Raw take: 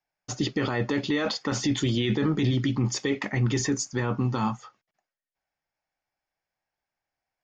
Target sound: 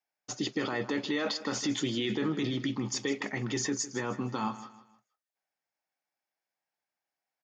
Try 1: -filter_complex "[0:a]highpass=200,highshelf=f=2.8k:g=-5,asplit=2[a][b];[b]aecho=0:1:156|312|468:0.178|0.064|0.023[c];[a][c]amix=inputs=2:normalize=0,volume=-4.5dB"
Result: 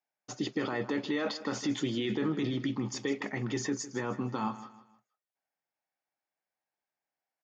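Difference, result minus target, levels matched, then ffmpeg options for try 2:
4000 Hz band -3.5 dB
-filter_complex "[0:a]highpass=200,highshelf=f=2.8k:g=2,asplit=2[a][b];[b]aecho=0:1:156|312|468:0.178|0.064|0.023[c];[a][c]amix=inputs=2:normalize=0,volume=-4.5dB"

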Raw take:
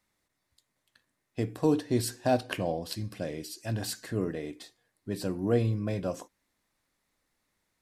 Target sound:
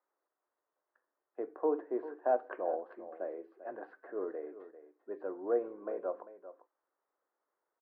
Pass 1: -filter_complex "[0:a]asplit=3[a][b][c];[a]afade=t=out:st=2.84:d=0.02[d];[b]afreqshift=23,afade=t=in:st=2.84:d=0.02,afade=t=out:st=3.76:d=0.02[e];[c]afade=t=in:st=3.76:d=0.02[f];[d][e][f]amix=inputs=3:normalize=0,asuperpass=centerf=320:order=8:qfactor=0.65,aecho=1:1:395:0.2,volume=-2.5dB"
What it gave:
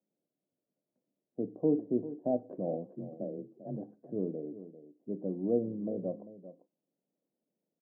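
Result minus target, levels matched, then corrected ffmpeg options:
1000 Hz band -10.5 dB
-filter_complex "[0:a]asplit=3[a][b][c];[a]afade=t=out:st=2.84:d=0.02[d];[b]afreqshift=23,afade=t=in:st=2.84:d=0.02,afade=t=out:st=3.76:d=0.02[e];[c]afade=t=in:st=3.76:d=0.02[f];[d][e][f]amix=inputs=3:normalize=0,asuperpass=centerf=730:order=8:qfactor=0.65,aecho=1:1:395:0.2,volume=-2.5dB"

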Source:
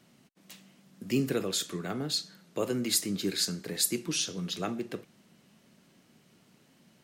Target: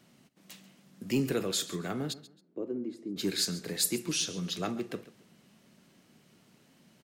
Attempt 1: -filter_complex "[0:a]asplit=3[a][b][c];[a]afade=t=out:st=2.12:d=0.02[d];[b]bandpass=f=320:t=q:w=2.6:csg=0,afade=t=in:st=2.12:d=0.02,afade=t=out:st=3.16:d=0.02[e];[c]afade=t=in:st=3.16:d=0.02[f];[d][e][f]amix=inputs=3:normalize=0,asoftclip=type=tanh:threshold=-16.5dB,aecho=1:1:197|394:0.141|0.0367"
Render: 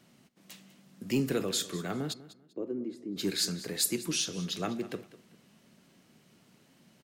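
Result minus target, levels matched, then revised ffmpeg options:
echo 61 ms late
-filter_complex "[0:a]asplit=3[a][b][c];[a]afade=t=out:st=2.12:d=0.02[d];[b]bandpass=f=320:t=q:w=2.6:csg=0,afade=t=in:st=2.12:d=0.02,afade=t=out:st=3.16:d=0.02[e];[c]afade=t=in:st=3.16:d=0.02[f];[d][e][f]amix=inputs=3:normalize=0,asoftclip=type=tanh:threshold=-16.5dB,aecho=1:1:136|272:0.141|0.0367"

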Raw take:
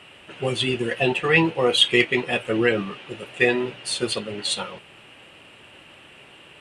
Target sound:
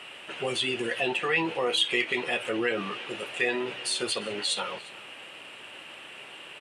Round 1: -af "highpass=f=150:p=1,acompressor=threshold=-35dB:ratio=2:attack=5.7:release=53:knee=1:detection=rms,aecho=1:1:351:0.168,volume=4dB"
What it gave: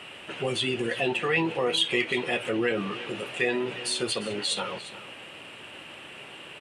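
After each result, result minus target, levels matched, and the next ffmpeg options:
125 Hz band +6.5 dB; echo-to-direct +6.5 dB
-af "highpass=f=510:p=1,acompressor=threshold=-35dB:ratio=2:attack=5.7:release=53:knee=1:detection=rms,aecho=1:1:351:0.168,volume=4dB"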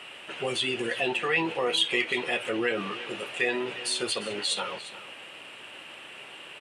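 echo-to-direct +6.5 dB
-af "highpass=f=510:p=1,acompressor=threshold=-35dB:ratio=2:attack=5.7:release=53:knee=1:detection=rms,aecho=1:1:351:0.0794,volume=4dB"

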